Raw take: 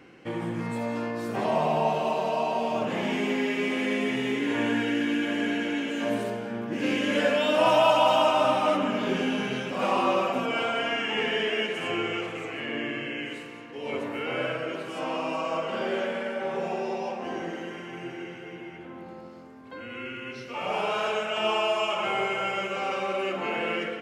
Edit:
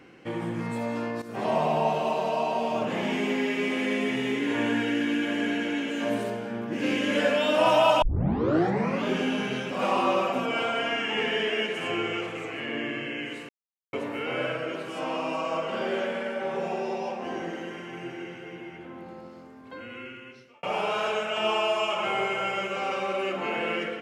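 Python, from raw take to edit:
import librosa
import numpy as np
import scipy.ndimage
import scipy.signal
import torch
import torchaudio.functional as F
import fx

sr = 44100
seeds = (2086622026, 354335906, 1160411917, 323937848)

y = fx.edit(x, sr, fx.fade_in_from(start_s=1.22, length_s=0.27, floor_db=-13.5),
    fx.tape_start(start_s=8.02, length_s=1.05),
    fx.silence(start_s=13.49, length_s=0.44),
    fx.fade_out_span(start_s=19.73, length_s=0.9), tone=tone)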